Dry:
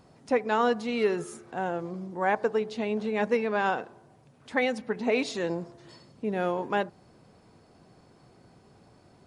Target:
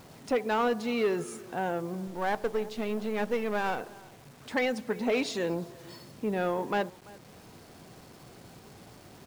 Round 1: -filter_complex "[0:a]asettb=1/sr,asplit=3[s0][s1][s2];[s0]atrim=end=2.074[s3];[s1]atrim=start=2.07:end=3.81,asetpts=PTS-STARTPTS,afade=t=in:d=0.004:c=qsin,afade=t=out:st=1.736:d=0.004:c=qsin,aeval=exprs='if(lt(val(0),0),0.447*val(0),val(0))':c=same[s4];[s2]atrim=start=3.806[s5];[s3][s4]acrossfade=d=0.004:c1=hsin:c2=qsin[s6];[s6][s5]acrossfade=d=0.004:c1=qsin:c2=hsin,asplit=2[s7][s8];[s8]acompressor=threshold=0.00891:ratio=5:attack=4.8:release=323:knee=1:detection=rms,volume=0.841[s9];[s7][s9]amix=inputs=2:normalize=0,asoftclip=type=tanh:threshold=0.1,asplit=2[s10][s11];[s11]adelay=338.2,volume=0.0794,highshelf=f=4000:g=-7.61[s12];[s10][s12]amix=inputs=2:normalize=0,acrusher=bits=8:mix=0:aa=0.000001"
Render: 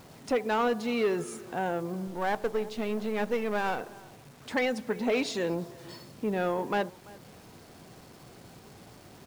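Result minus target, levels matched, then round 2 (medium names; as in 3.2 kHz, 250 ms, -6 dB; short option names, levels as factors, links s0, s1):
compression: peak gain reduction -6 dB
-filter_complex "[0:a]asettb=1/sr,asplit=3[s0][s1][s2];[s0]atrim=end=2.074[s3];[s1]atrim=start=2.07:end=3.81,asetpts=PTS-STARTPTS,afade=t=in:d=0.004:c=qsin,afade=t=out:st=1.736:d=0.004:c=qsin,aeval=exprs='if(lt(val(0),0),0.447*val(0),val(0))':c=same[s4];[s2]atrim=start=3.806[s5];[s3][s4]acrossfade=d=0.004:c1=hsin:c2=qsin[s6];[s6][s5]acrossfade=d=0.004:c1=qsin:c2=hsin,asplit=2[s7][s8];[s8]acompressor=threshold=0.00376:ratio=5:attack=4.8:release=323:knee=1:detection=rms,volume=0.841[s9];[s7][s9]amix=inputs=2:normalize=0,asoftclip=type=tanh:threshold=0.1,asplit=2[s10][s11];[s11]adelay=338.2,volume=0.0794,highshelf=f=4000:g=-7.61[s12];[s10][s12]amix=inputs=2:normalize=0,acrusher=bits=8:mix=0:aa=0.000001"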